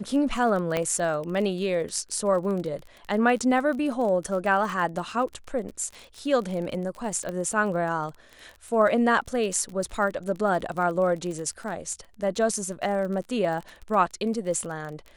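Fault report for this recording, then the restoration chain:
crackle 29/s -32 dBFS
0.77 pop -12 dBFS
7.29 pop -20 dBFS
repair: de-click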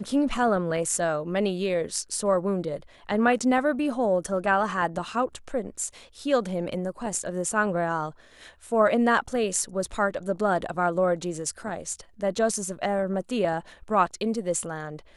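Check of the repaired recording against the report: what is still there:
none

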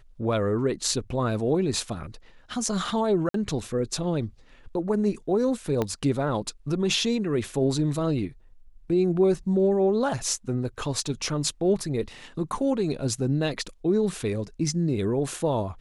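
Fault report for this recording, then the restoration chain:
3.29–3.34 gap 53 ms
5.82 pop -13 dBFS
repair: de-click; interpolate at 3.29, 53 ms

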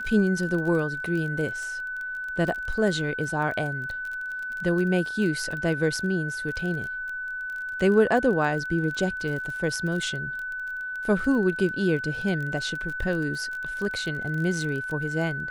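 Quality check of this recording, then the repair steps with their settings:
crackle 24/s -31 dBFS
tone 1500 Hz -30 dBFS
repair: de-click; notch 1500 Hz, Q 30

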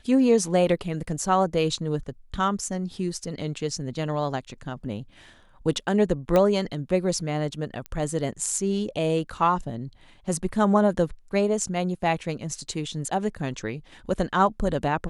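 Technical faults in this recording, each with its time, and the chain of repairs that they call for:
6.36 pop -10 dBFS
7.86 pop -19 dBFS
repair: de-click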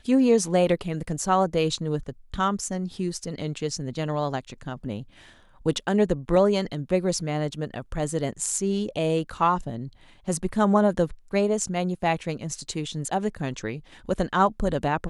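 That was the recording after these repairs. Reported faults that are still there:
none

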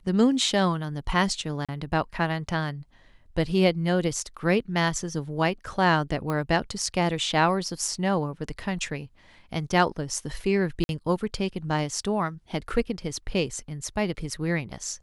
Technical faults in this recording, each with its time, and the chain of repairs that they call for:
1.65–1.69 gap 36 ms
6.3 pop -17 dBFS
10.84–10.89 gap 51 ms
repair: de-click; interpolate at 1.65, 36 ms; interpolate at 10.84, 51 ms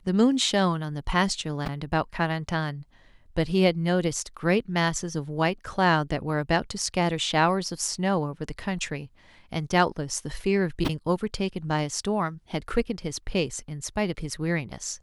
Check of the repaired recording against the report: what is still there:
6.3 pop

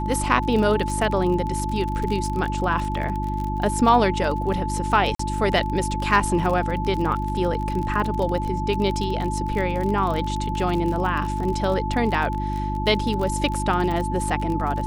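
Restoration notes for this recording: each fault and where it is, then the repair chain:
crackle 32/s -26 dBFS
hum 50 Hz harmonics 7 -27 dBFS
tone 870 Hz -28 dBFS
5.15–5.19 gap 44 ms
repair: de-click; notch 870 Hz, Q 30; de-hum 50 Hz, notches 7; interpolate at 5.15, 44 ms

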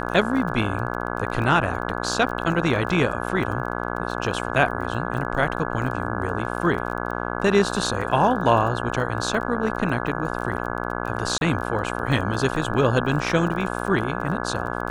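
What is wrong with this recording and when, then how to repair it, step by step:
buzz 60 Hz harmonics 28 -28 dBFS
crackle 25/s -31 dBFS
11.38–11.41 gap 31 ms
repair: de-click; de-hum 60 Hz, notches 28; interpolate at 11.38, 31 ms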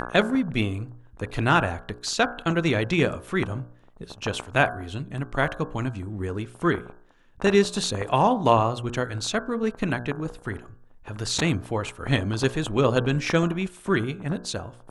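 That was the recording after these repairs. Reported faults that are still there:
none

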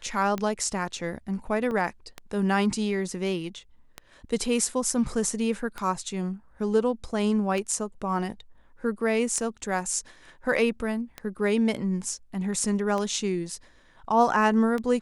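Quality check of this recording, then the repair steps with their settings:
tick 33 1/3 rpm -17 dBFS
1.71 gap 3.6 ms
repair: de-click; interpolate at 1.71, 3.6 ms

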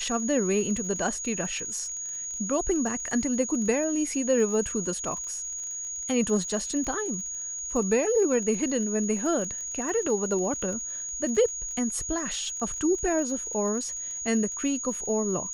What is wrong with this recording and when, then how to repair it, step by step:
crackle 33/s -35 dBFS
tone 6700 Hz -32 dBFS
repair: de-click; notch 6700 Hz, Q 30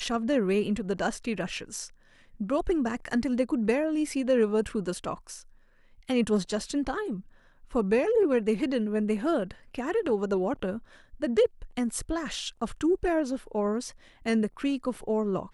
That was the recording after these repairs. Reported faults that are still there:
none

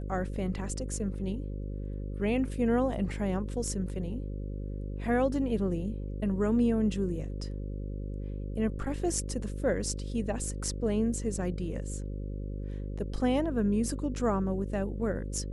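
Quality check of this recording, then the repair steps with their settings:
buzz 50 Hz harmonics 11 -36 dBFS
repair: de-hum 50 Hz, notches 11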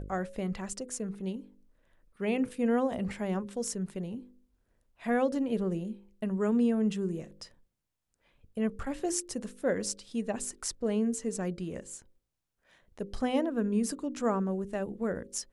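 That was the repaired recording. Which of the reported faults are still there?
none

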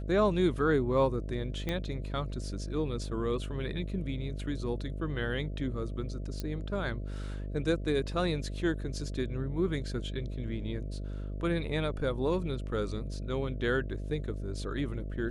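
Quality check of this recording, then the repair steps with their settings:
buzz 50 Hz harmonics 13 -37 dBFS
1.69 pop -19 dBFS
6.4 pop -22 dBFS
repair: de-click; de-hum 50 Hz, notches 13

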